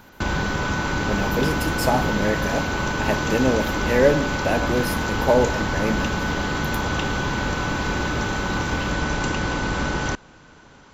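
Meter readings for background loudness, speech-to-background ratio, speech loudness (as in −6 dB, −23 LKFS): −24.0 LKFS, 0.0 dB, −24.0 LKFS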